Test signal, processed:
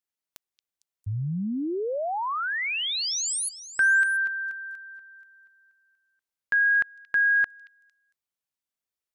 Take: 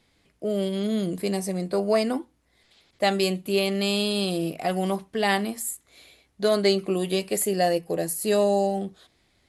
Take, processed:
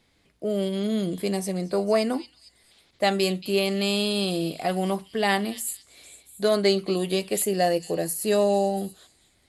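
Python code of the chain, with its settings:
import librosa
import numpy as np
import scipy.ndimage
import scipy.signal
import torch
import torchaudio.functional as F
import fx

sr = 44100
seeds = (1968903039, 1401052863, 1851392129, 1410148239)

y = fx.echo_stepped(x, sr, ms=227, hz=3800.0, octaves=0.7, feedback_pct=70, wet_db=-11)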